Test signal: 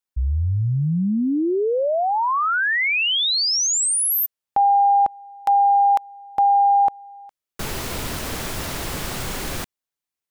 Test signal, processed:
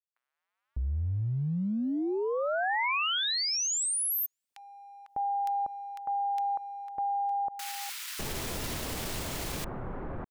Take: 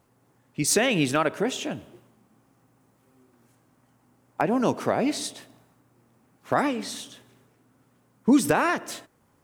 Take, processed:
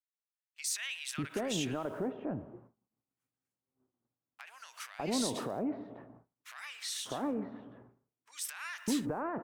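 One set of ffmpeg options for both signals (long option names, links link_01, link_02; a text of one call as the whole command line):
ffmpeg -i in.wav -filter_complex "[0:a]agate=range=-33dB:threshold=-50dB:ratio=3:release=210:detection=rms,acompressor=threshold=-29dB:ratio=6:attack=0.29:release=66:knee=6:detection=peak,acrossover=split=1400[link_01][link_02];[link_01]adelay=600[link_03];[link_03][link_02]amix=inputs=2:normalize=0" out.wav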